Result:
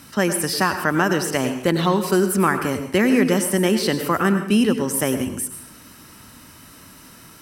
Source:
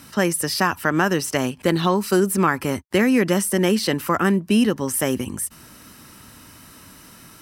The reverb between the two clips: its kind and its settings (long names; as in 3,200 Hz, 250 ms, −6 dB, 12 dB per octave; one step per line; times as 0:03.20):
dense smooth reverb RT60 0.61 s, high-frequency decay 0.85×, pre-delay 85 ms, DRR 8 dB